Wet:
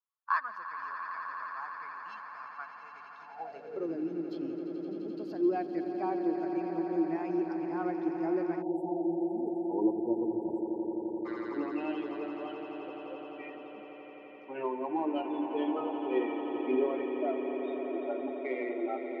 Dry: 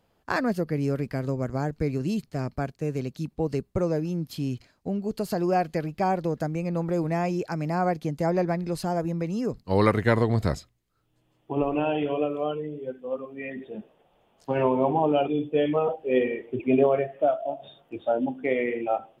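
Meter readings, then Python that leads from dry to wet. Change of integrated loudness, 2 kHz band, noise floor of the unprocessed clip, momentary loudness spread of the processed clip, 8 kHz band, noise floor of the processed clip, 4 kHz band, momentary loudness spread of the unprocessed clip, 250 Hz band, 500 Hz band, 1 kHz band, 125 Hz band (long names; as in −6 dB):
−7.0 dB, −7.0 dB, −69 dBFS, 13 LU, below −25 dB, −49 dBFS, below −10 dB, 11 LU, −4.5 dB, −8.5 dB, −7.0 dB, −23.5 dB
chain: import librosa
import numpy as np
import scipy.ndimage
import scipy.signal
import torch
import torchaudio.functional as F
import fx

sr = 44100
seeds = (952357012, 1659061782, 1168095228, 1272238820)

p1 = fx.bin_expand(x, sr, power=1.5)
p2 = fx.graphic_eq(p1, sr, hz=(125, 250, 500), db=(-5, -6, -12))
p3 = np.clip(10.0 ** (31.5 / 20.0) * p2, -1.0, 1.0) / 10.0 ** (31.5 / 20.0)
p4 = p2 + (p3 * librosa.db_to_amplitude(-9.0))
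p5 = fx.air_absorb(p4, sr, metres=280.0)
p6 = fx.hum_notches(p5, sr, base_hz=50, count=6)
p7 = p6 + fx.echo_swell(p6, sr, ms=86, loudest=8, wet_db=-12.0, dry=0)
p8 = fx.filter_sweep_highpass(p7, sr, from_hz=1100.0, to_hz=330.0, start_s=3.19, end_s=3.94, q=7.8)
p9 = scipy.signal.sosfilt(scipy.signal.butter(2, 97.0, 'highpass', fs=sr, output='sos'), p8)
p10 = fx.spec_erase(p9, sr, start_s=8.62, length_s=2.64, low_hz=970.0, high_hz=7300.0)
y = p10 * librosa.db_to_amplitude(-6.0)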